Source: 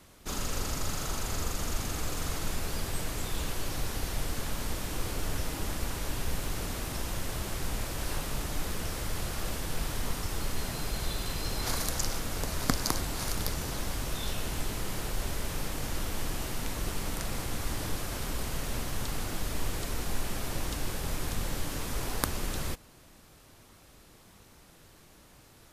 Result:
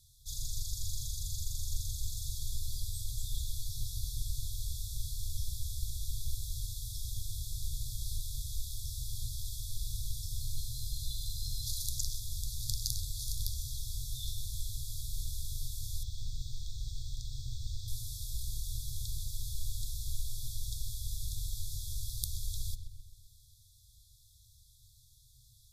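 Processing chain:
brick-wall band-stop 130–3,300 Hz
0:16.03–0:17.88: moving average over 4 samples
feedback echo with a low-pass in the loop 130 ms, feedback 55%, low-pass 2,200 Hz, level −7 dB
level −3.5 dB

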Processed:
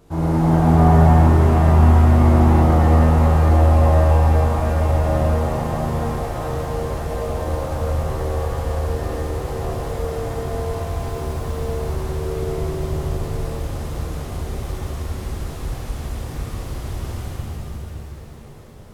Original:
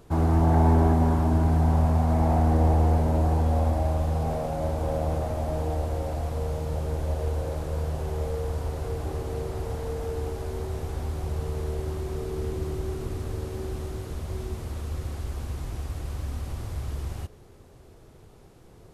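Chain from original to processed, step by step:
0:10.95–0:11.47: noise that follows the level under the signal 32 dB
reverb with rising layers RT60 3.9 s, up +7 semitones, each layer −8 dB, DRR −8 dB
level −2 dB

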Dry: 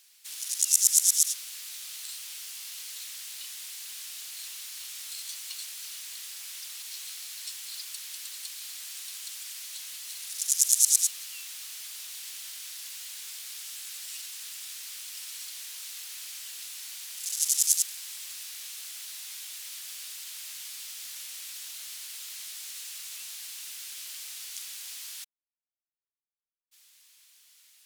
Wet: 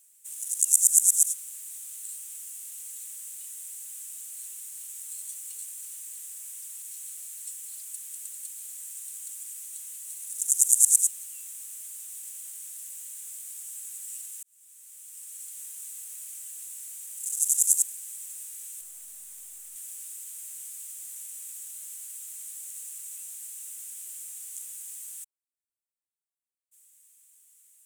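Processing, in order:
0:18.81–0:19.76: gain on one half-wave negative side −12 dB
high shelf with overshoot 6,200 Hz +10.5 dB, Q 3
0:14.43–0:15.61: fade in
level −12 dB

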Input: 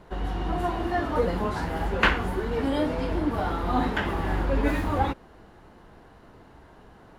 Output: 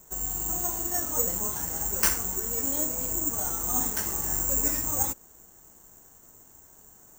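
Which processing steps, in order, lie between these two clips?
0:02.69–0:03.30: high-frequency loss of the air 94 metres
bad sample-rate conversion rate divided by 6×, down none, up zero stuff
level −10.5 dB

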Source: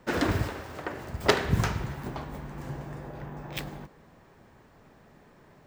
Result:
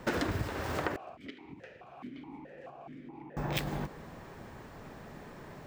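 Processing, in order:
downward compressor 10 to 1, threshold −37 dBFS, peak gain reduction 21.5 dB
0:00.96–0:03.37: formant filter that steps through the vowels 4.7 Hz
level +8 dB

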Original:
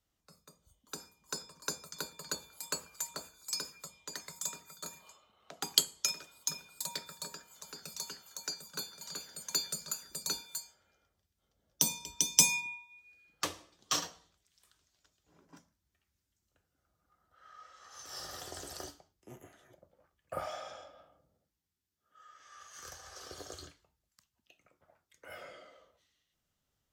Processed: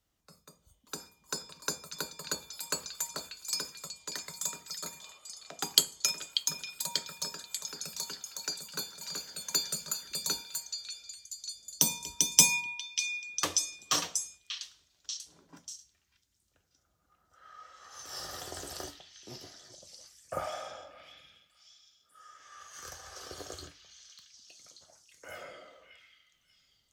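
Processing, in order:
echo through a band-pass that steps 589 ms, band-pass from 3,000 Hz, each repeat 0.7 octaves, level −4.5 dB
level +3 dB

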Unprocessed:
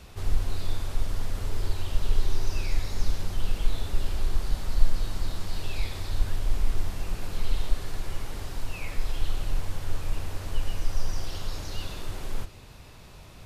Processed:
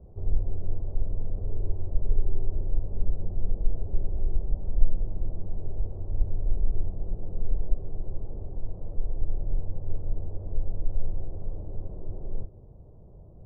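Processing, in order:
inverse Chebyshev low-pass filter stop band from 2,700 Hz, stop band 70 dB
parametric band 260 Hz −6.5 dB 0.34 octaves

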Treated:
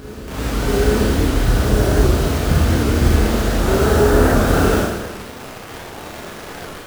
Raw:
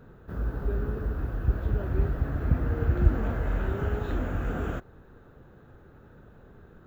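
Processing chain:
high-shelf EQ 2,600 Hz −10 dB
in parallel at −8 dB: sample-and-hold swept by an LFO 22×, swing 160% 0.42 Hz
on the sum: automatic gain control gain up to 9 dB
bit reduction 6 bits
low-shelf EQ 180 Hz −9.5 dB
on a send: backwards echo 837 ms −15.5 dB
on the sum: four-comb reverb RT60 1.2 s, combs from 26 ms, DRR −4 dB
wow of a warped record 78 rpm, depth 160 cents
level +4.5 dB

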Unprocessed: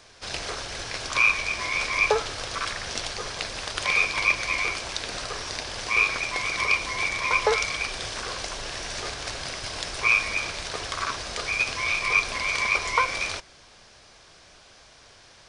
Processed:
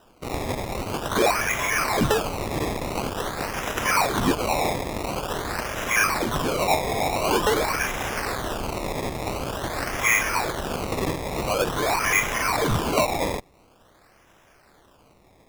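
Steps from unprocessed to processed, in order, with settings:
sample-and-hold swept by an LFO 20×, swing 100% 0.47 Hz
in parallel at −7.5 dB: fuzz pedal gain 30 dB, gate −39 dBFS
on the sum: level −4 dB

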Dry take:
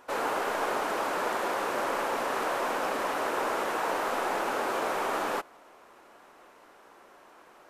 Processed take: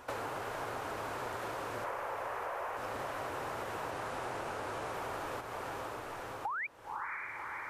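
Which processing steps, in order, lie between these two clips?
sub-octave generator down 2 octaves, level −1 dB
0:01.84–0:02.77: graphic EQ with 10 bands 125 Hz −11 dB, 250 Hz −11 dB, 500 Hz +6 dB, 1,000 Hz +5 dB, 2,000 Hz +4 dB, 4,000 Hz −6 dB, 8,000 Hz −4 dB
0:06.45–0:06.67: sound drawn into the spectrogram rise 780–2,500 Hz −24 dBFS
feedback delay with all-pass diffusion 539 ms, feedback 40%, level −8 dB
downward compressor 6 to 1, threshold −40 dBFS, peak gain reduction 17.5 dB
0:03.91–0:04.93: low-pass filter 12,000 Hz 24 dB per octave
level +2.5 dB

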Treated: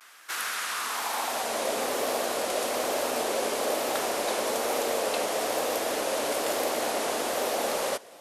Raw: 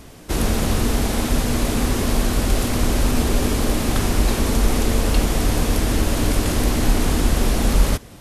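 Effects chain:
pitch vibrato 1.1 Hz 88 cents
high-pass filter sweep 1,400 Hz → 570 Hz, 0:00.65–0:01.67
level −5 dB

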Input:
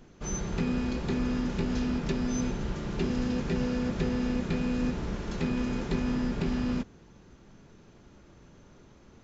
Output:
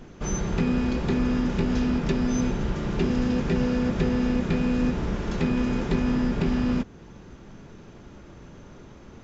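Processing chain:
high-shelf EQ 5,200 Hz −6 dB
notch filter 4,200 Hz, Q 24
in parallel at −2 dB: downward compressor, threshold −40 dBFS, peak gain reduction 15 dB
on the sum: level +4 dB

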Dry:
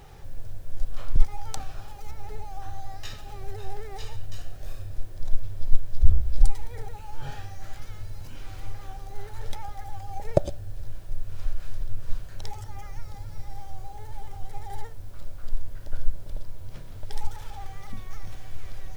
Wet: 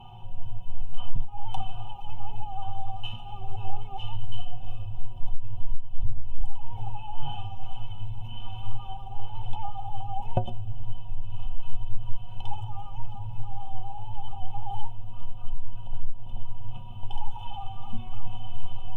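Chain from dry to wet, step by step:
drawn EQ curve 120 Hz 0 dB, 170 Hz +9 dB, 290 Hz −7 dB, 550 Hz −11 dB, 830 Hz +12 dB, 1,300 Hz −7 dB, 1,900 Hz −30 dB, 2,900 Hz +12 dB, 4,300 Hz −26 dB, 6,100 Hz −21 dB
downward compressor 5 to 1, threshold −19 dBFS, peak gain reduction 13.5 dB
stiff-string resonator 110 Hz, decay 0.24 s, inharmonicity 0.03
level +10.5 dB

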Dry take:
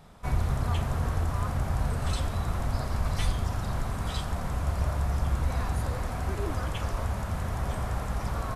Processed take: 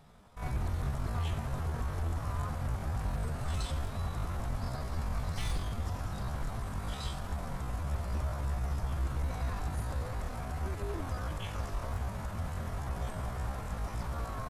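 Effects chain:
wave folding −20 dBFS
tempo change 0.59×
level −5.5 dB

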